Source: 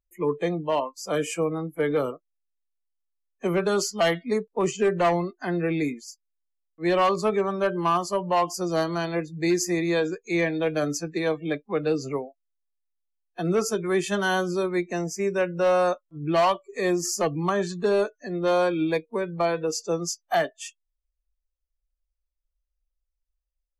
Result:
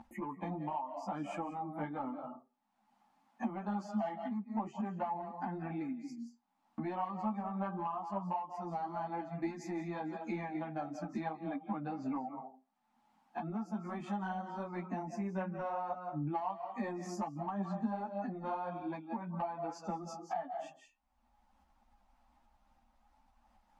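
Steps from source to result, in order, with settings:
upward compression, threshold −25 dBFS
pair of resonant band-passes 440 Hz, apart 1.8 octaves
convolution reverb RT60 0.35 s, pre-delay 139 ms, DRR 11 dB
downward compressor 12 to 1, threshold −47 dBFS, peak gain reduction 21.5 dB
soft clipping −37 dBFS, distortion −28 dB
string-ensemble chorus
level +15.5 dB

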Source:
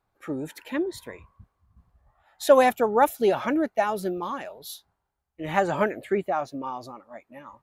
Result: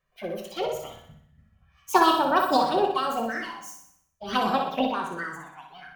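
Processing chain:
formants moved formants +4 semitones
flanger swept by the level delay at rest 2.2 ms, full sweep at −22.5 dBFS
speed change +28%
flutter between parallel walls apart 10.5 metres, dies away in 0.66 s
rectangular room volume 260 cubic metres, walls furnished, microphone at 1.1 metres

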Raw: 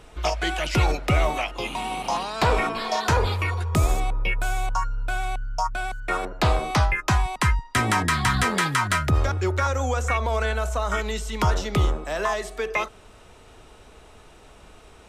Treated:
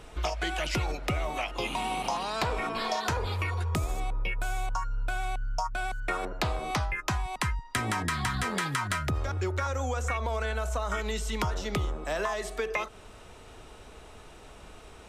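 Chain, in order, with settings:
downward compressor, threshold −27 dBFS, peak gain reduction 11.5 dB

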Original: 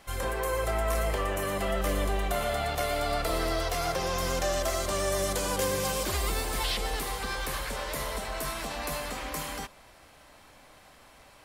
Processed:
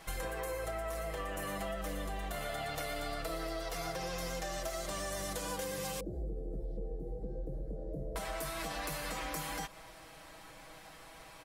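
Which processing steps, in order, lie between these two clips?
0:06.00–0:08.16: inverse Chebyshev low-pass filter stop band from 1,000 Hz, stop band 40 dB
comb filter 6.2 ms, depth 72%
downward compressor 12 to 1, threshold −35 dBFS, peak gain reduction 13.5 dB

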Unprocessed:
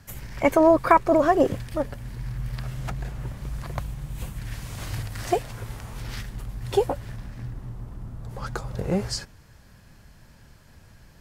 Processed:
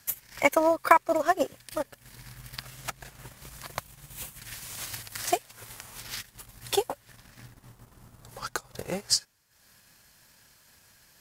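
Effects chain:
spectral tilt +3.5 dB per octave
transient designer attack +6 dB, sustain −11 dB
level −5.5 dB

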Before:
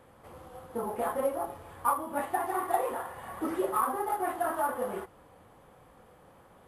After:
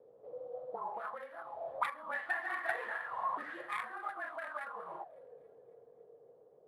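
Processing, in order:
stylus tracing distortion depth 0.32 ms
source passing by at 0:02.88, 7 m/s, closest 4.1 metres
dynamic equaliser 700 Hz, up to −5 dB, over −47 dBFS, Q 1.5
in parallel at 0 dB: downward compressor, threshold −47 dBFS, peak gain reduction 20.5 dB
on the sum: graphic EQ with 15 bands 160 Hz +12 dB, 630 Hz +11 dB, 4,000 Hz +10 dB
envelope filter 440–1,800 Hz, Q 7.9, up, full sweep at −28.5 dBFS
on a send: delay with a high-pass on its return 276 ms, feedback 58%, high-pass 2,800 Hz, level −22 dB
on the sum: frequency shifter −26 Hz
level +9 dB

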